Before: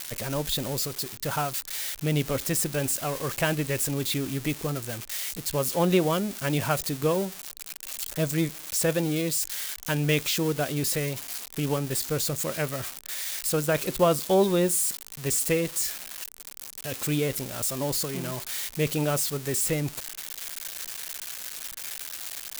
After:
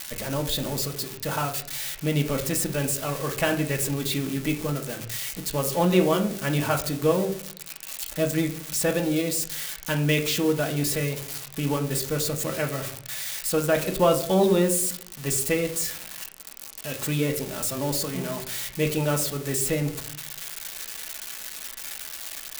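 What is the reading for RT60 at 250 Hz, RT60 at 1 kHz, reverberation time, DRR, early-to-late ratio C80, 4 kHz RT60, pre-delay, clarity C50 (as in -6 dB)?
0.80 s, 0.50 s, 0.60 s, 2.5 dB, 14.5 dB, 0.40 s, 3 ms, 11.0 dB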